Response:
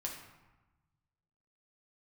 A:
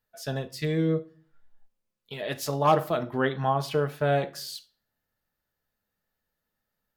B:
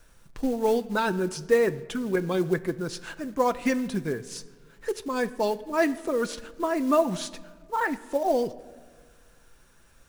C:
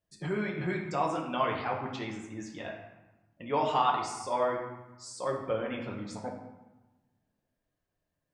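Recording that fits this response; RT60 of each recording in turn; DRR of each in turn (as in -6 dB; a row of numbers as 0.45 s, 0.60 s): C; 0.45 s, 1.6 s, 1.1 s; 9.0 dB, 10.0 dB, -1.0 dB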